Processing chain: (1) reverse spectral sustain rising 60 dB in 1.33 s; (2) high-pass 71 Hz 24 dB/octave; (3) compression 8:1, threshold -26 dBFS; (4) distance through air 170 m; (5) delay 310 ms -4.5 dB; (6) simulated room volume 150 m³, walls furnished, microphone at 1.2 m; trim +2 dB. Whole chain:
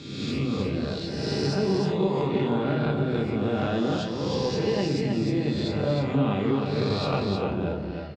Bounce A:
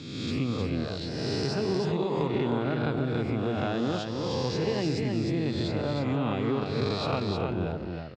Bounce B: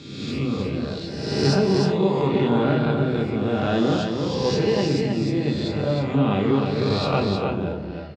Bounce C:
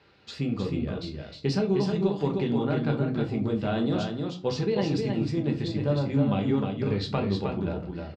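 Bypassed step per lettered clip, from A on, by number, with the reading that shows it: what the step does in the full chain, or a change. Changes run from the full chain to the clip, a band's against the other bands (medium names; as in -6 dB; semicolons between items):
6, loudness change -3.0 LU; 3, mean gain reduction 3.0 dB; 1, 125 Hz band +3.0 dB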